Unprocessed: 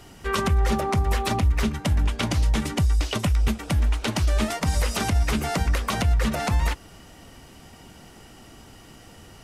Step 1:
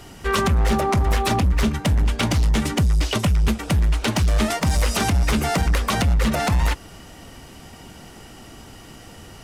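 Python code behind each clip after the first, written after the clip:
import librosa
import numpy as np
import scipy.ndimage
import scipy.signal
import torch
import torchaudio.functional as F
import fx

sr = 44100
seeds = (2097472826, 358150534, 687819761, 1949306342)

y = np.clip(x, -10.0 ** (-19.5 / 20.0), 10.0 ** (-19.5 / 20.0))
y = y * 10.0 ** (5.0 / 20.0)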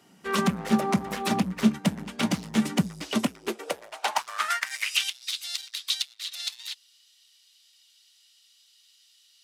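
y = fx.low_shelf(x, sr, hz=310.0, db=-7.5)
y = fx.filter_sweep_highpass(y, sr, from_hz=190.0, to_hz=3800.0, start_s=3.06, end_s=5.2, q=4.2)
y = fx.upward_expand(y, sr, threshold_db=-40.0, expansion=1.5)
y = y * 10.0 ** (-2.0 / 20.0)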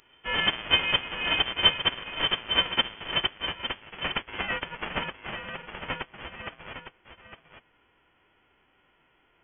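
y = fx.envelope_flatten(x, sr, power=0.1)
y = y + 10.0 ** (-9.5 / 20.0) * np.pad(y, (int(857 * sr / 1000.0), 0))[:len(y)]
y = fx.freq_invert(y, sr, carrier_hz=3300)
y = y * 10.0 ** (2.0 / 20.0)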